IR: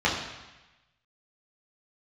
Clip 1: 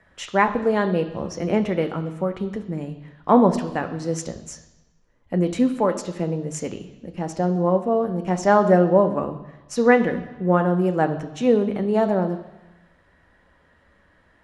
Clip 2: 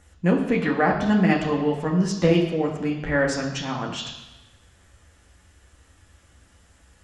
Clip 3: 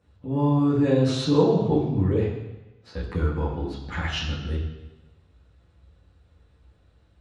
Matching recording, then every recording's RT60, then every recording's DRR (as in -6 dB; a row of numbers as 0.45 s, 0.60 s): 3; 1.1 s, 1.1 s, 1.1 s; 6.5 dB, -1.0 dB, -6.5 dB